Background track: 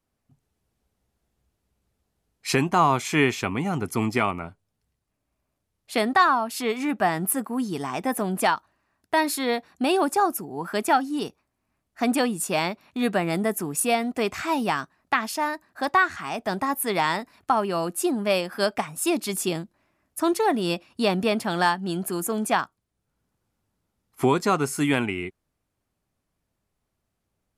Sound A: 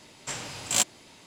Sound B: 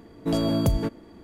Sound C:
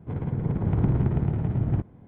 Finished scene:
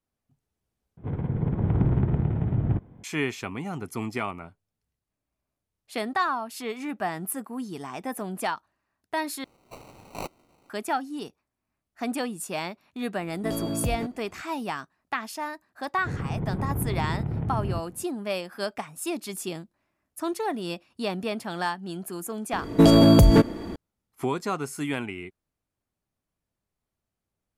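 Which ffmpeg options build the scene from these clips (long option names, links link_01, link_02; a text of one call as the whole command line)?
ffmpeg -i bed.wav -i cue0.wav -i cue1.wav -i cue2.wav -filter_complex "[3:a]asplit=2[link_01][link_02];[2:a]asplit=2[link_03][link_04];[0:a]volume=-7dB[link_05];[1:a]acrusher=samples=26:mix=1:aa=0.000001[link_06];[link_02]acompressor=threshold=-23dB:ratio=6:attack=3.2:release=140:knee=1:detection=peak[link_07];[link_04]alimiter=level_in=19dB:limit=-1dB:release=50:level=0:latency=1[link_08];[link_05]asplit=3[link_09][link_10][link_11];[link_09]atrim=end=0.974[link_12];[link_01]atrim=end=2.07[link_13];[link_10]atrim=start=3.036:end=9.444[link_14];[link_06]atrim=end=1.26,asetpts=PTS-STARTPTS,volume=-10.5dB[link_15];[link_11]atrim=start=10.696[link_16];[link_03]atrim=end=1.23,asetpts=PTS-STARTPTS,volume=-6.5dB,afade=type=in:duration=0.004:curve=hsin,afade=type=out:start_time=1.226:duration=0.004:curve=hsin,adelay=13180[link_17];[link_07]atrim=end=2.07,asetpts=PTS-STARTPTS,volume=-1dB,afade=type=in:duration=0.004:curve=hsin,afade=type=out:start_time=2.066:duration=0.004:curve=hsin,adelay=15980[link_18];[link_08]atrim=end=1.23,asetpts=PTS-STARTPTS,volume=-6dB,afade=type=in:duration=0.004:curve=hsin,afade=type=out:start_time=1.226:duration=0.004:curve=hsin,adelay=22530[link_19];[link_12][link_13]acrossfade=duration=0.004:curve1=hsin:curve2=hsin[link_20];[link_20][link_14]acrossfade=duration=0.004:curve1=hsin:curve2=hsin[link_21];[link_21][link_15]acrossfade=duration=0.004:curve1=hsin:curve2=hsin[link_22];[link_22][link_16]acrossfade=duration=0.004:curve1=hsin:curve2=hsin[link_23];[link_23][link_17][link_18][link_19]amix=inputs=4:normalize=0" out.wav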